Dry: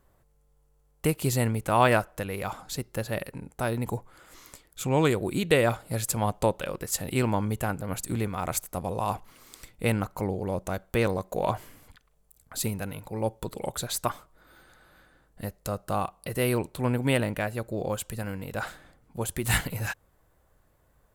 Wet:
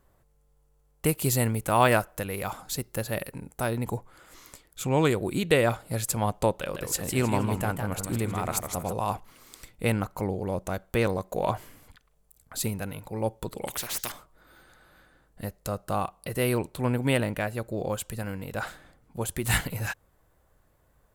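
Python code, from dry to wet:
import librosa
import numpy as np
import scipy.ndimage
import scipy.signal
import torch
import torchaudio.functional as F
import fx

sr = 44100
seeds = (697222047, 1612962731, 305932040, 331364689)

y = fx.high_shelf(x, sr, hz=8800.0, db=9.0, at=(1.06, 3.67))
y = fx.echo_warbled(y, sr, ms=158, feedback_pct=35, rate_hz=2.8, cents=174, wet_db=-6.0, at=(6.54, 8.93))
y = fx.spectral_comp(y, sr, ratio=4.0, at=(13.67, 14.12))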